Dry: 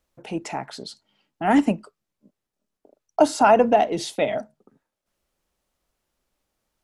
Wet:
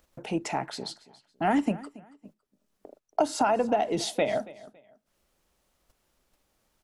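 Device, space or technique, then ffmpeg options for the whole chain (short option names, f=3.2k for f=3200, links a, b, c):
upward and downward compression: -af "acompressor=mode=upward:threshold=-38dB:ratio=2.5,acompressor=threshold=-21dB:ratio=6,agate=range=-16dB:threshold=-52dB:ratio=16:detection=peak,aecho=1:1:279|558:0.1|0.028"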